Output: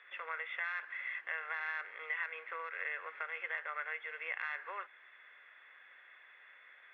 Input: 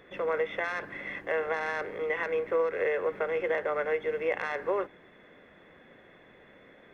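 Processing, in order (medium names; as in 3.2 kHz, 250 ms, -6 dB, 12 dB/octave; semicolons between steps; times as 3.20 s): Butterworth band-pass 2 kHz, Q 1; compression 1.5:1, threshold -45 dBFS, peak gain reduction 6 dB; trim +1.5 dB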